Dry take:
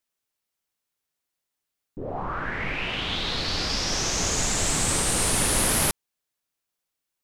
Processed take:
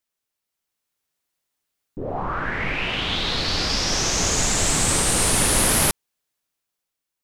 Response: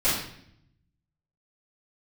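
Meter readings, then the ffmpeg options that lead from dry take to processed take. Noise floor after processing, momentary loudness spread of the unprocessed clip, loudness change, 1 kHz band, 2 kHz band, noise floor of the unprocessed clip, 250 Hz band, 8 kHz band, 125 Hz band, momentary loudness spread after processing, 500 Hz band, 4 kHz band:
−84 dBFS, 11 LU, +4.0 dB, +4.0 dB, +4.0 dB, −84 dBFS, +4.0 dB, +4.0 dB, +4.0 dB, 10 LU, +4.0 dB, +4.0 dB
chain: -af "dynaudnorm=framelen=120:gausssize=13:maxgain=4dB"

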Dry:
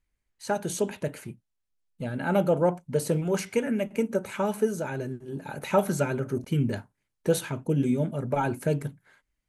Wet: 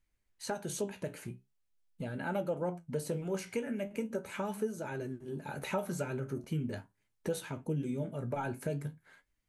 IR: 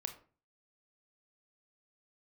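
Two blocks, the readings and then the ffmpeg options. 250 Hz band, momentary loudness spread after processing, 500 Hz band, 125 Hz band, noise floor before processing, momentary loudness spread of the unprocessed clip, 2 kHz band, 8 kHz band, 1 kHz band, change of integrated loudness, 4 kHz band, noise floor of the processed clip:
−9.5 dB, 7 LU, −10.0 dB, −9.0 dB, −81 dBFS, 11 LU, −7.5 dB, −8.0 dB, −9.5 dB, −9.5 dB, −7.5 dB, −79 dBFS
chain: -af "flanger=delay=8.5:depth=8.8:regen=58:speed=0.42:shape=triangular,acompressor=threshold=-43dB:ratio=2,volume=3.5dB"

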